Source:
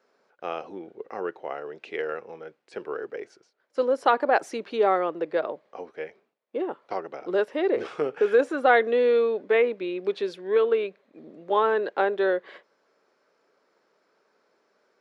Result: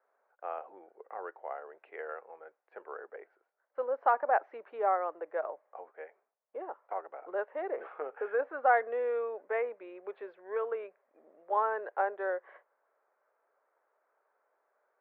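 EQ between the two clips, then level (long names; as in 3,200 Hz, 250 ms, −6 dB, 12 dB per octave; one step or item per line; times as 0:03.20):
high-pass with resonance 690 Hz, resonance Q 1.6
low-pass filter 1,900 Hz 24 dB per octave
−8.5 dB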